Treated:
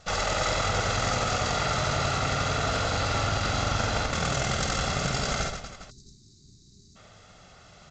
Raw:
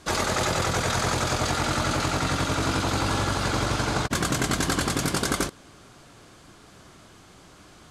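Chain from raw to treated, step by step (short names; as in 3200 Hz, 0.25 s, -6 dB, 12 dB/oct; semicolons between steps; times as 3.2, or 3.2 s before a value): minimum comb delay 1.5 ms; on a send: reverse bouncing-ball echo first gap 50 ms, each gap 1.5×, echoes 5; on the sum: spectral delete 5.9–6.96, 430–3600 Hz; gain -2 dB; G.722 64 kbps 16000 Hz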